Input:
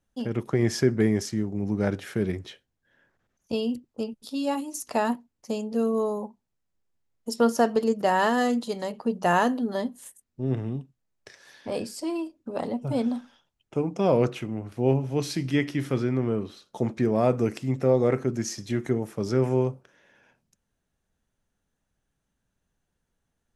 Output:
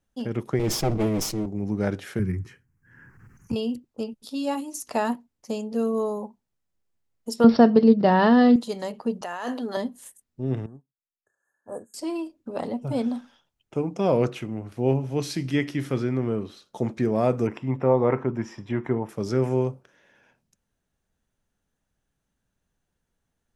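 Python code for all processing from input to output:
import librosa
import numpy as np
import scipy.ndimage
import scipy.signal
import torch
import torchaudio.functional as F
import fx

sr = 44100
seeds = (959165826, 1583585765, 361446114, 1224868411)

y = fx.chain(x, sr, fx.lower_of_two(delay_ms=6.2),
    fx.peak_eq(hz=1700.0, db=-12.0, octaves=0.29),
    fx.sustainer(db_per_s=57.0), at=(0.59, 1.46))
y = fx.chain(y, sr, fx.peak_eq(hz=120.0, db=12.5, octaves=1.2),
    fx.fixed_phaser(hz=1500.0, stages=4),
    fx.band_squash(depth_pct=70), at=(2.19, 3.56))
y = fx.chain(y, sr, fx.peak_eq(hz=160.0, db=13.0, octaves=2.4),
    fx.resample_bad(factor=4, down='none', up='filtered'), at=(7.44, 8.56))
y = fx.chain(y, sr, fx.weighting(curve='A'),
    fx.over_compress(threshold_db=-30.0, ratio=-1.0), at=(9.21, 9.77))
y = fx.chain(y, sr, fx.brickwall_bandstop(low_hz=1800.0, high_hz=6300.0),
    fx.low_shelf(hz=490.0, db=-7.5),
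    fx.upward_expand(threshold_db=-45.0, expansion=2.5), at=(10.66, 11.94))
y = fx.chain(y, sr, fx.savgol(points=25),
    fx.peak_eq(hz=960.0, db=12.5, octaves=0.47), at=(17.47, 19.09))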